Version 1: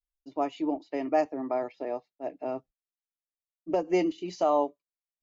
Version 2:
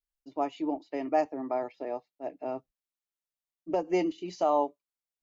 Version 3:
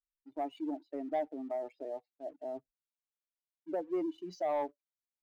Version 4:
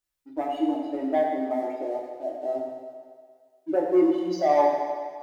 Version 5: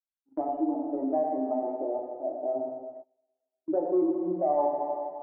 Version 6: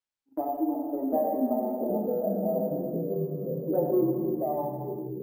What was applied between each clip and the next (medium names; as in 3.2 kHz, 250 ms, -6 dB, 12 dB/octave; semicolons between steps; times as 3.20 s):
dynamic bell 850 Hz, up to +4 dB, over -41 dBFS, Q 5; trim -2 dB
spectral contrast enhancement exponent 1.7; waveshaping leveller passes 1; trim -9 dB
reverberation RT60 1.9 s, pre-delay 4 ms, DRR -2.5 dB; trim +8 dB
low-pass 1 kHz 24 dB/octave; gate -42 dBFS, range -25 dB; compression 2:1, threshold -26 dBFS, peak gain reduction 6.5 dB
fade out at the end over 1.22 s; ever faster or slower copies 653 ms, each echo -4 st, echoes 3; careless resampling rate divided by 3×, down none, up hold